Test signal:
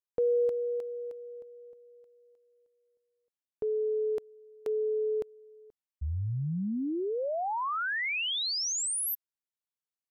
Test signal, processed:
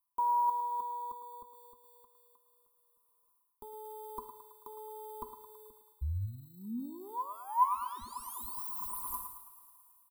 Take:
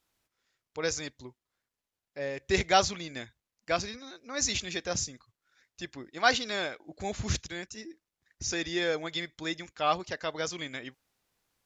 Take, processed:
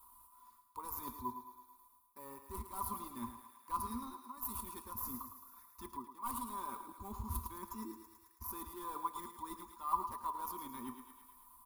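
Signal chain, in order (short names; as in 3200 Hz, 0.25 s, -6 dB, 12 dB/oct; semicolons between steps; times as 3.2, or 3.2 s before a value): self-modulated delay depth 0.26 ms; in parallel at -7 dB: sample-and-hold 11×; on the sum: high shelf 7100 Hz +11.5 dB; comb 5.1 ms, depth 47%; two-slope reverb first 0.63 s, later 1.9 s, from -19 dB, DRR 16 dB; reverse; compressor 8:1, threshold -41 dBFS; reverse; EQ curve 100 Hz 0 dB, 160 Hz -28 dB, 230 Hz -3 dB, 690 Hz -29 dB, 1000 Hz +13 dB, 1600 Hz -26 dB, 4100 Hz -22 dB, 6200 Hz -27 dB, 10000 Hz -7 dB; thinning echo 0.109 s, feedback 57%, high-pass 350 Hz, level -9 dB; mismatched tape noise reduction encoder only; gain +8.5 dB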